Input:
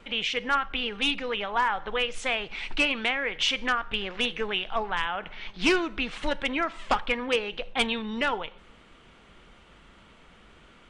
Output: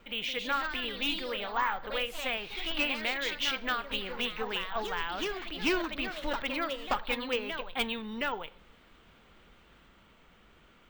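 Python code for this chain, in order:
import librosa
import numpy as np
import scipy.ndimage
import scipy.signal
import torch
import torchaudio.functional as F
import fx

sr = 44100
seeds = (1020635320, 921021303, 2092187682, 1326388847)

y = fx.echo_pitch(x, sr, ms=177, semitones=2, count=3, db_per_echo=-6.0)
y = np.repeat(y[::2], 2)[:len(y)]
y = y * 10.0 ** (-6.0 / 20.0)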